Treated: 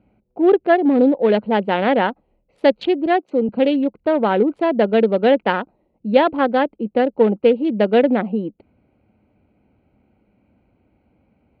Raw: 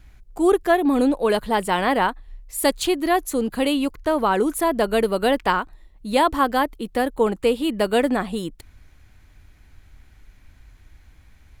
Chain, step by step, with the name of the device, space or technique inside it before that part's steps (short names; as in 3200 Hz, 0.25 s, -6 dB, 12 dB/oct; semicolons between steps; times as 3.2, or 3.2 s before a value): Wiener smoothing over 25 samples; kitchen radio (speaker cabinet 200–3500 Hz, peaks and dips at 210 Hz +7 dB, 530 Hz +5 dB, 1100 Hz -9 dB); 3.06–3.49 HPF 220 Hz; bell 8000 Hz -3 dB 0.72 oct; gain +3.5 dB